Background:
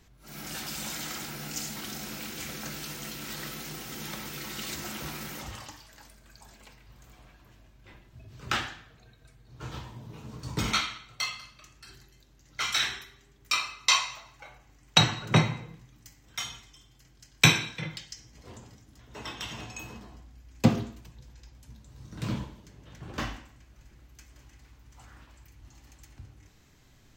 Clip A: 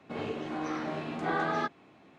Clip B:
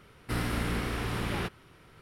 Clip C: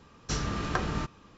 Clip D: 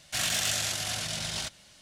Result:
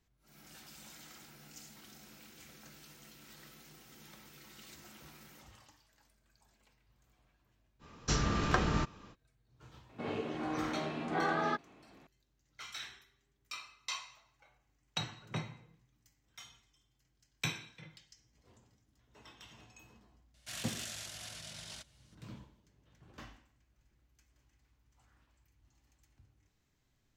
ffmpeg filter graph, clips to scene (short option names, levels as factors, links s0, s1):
-filter_complex "[0:a]volume=0.133[s0];[4:a]bandreject=f=770:w=17[s1];[3:a]atrim=end=1.37,asetpts=PTS-STARTPTS,afade=t=in:d=0.05,afade=t=out:st=1.32:d=0.05,adelay=7790[s2];[1:a]atrim=end=2.18,asetpts=PTS-STARTPTS,volume=0.75,afade=t=in:d=0.004:c=hsin,afade=t=out:st=2.176:d=0.004:c=hsin,adelay=9890[s3];[s1]atrim=end=1.81,asetpts=PTS-STARTPTS,volume=0.188,afade=t=in:d=0.004:c=hsin,afade=t=out:st=1.806:d=0.004:c=hsin,adelay=20340[s4];[s0][s2][s3][s4]amix=inputs=4:normalize=0"